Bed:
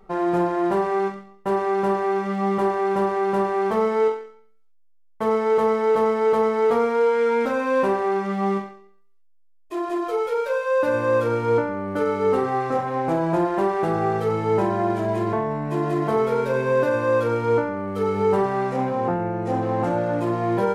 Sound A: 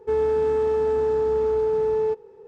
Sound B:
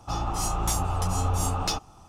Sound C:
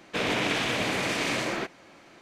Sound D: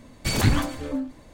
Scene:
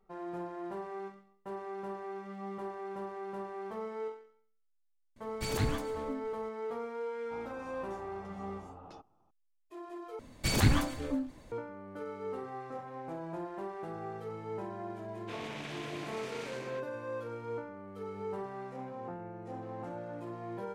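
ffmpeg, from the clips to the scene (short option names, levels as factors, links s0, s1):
-filter_complex "[4:a]asplit=2[s0][s1];[0:a]volume=0.112[s2];[2:a]bandpass=f=420:t=q:w=0.72:csg=0[s3];[s2]asplit=2[s4][s5];[s4]atrim=end=10.194[s6];[s1]atrim=end=1.33,asetpts=PTS-STARTPTS,volume=0.562[s7];[s5]atrim=start=11.516[s8];[s0]atrim=end=1.33,asetpts=PTS-STARTPTS,volume=0.251,afade=t=in:d=0.004:c=hsin,afade=t=out:st=1.326:d=0.004:c=hsin,adelay=5160[s9];[s3]atrim=end=2.08,asetpts=PTS-STARTPTS,volume=0.158,afade=t=in:d=0.004:c=hsin,afade=t=out:st=2.076:d=0.004:c=hsin,adelay=7230[s10];[3:a]atrim=end=2.21,asetpts=PTS-STARTPTS,volume=0.141,afade=t=in:d=0.004:c=hsin,afade=t=out:st=2.206:d=0.004:c=hsin,adelay=15140[s11];[s6][s7]acrossfade=d=0.004:c1=hsin:c2=hsin[s12];[s12][s8]acrossfade=d=0.004:c1=hsin:c2=hsin[s13];[s13][s9][s10][s11]amix=inputs=4:normalize=0"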